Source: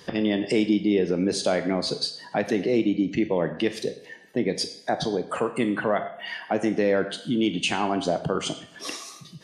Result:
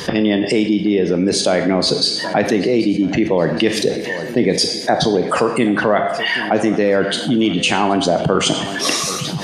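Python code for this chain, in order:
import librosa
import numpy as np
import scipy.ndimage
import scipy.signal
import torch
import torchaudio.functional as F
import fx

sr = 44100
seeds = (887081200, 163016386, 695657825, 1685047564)

y = fx.rider(x, sr, range_db=4, speed_s=0.5)
y = fx.echo_feedback(y, sr, ms=777, feedback_pct=47, wet_db=-20)
y = fx.env_flatten(y, sr, amount_pct=50)
y = y * 10.0 ** (6.5 / 20.0)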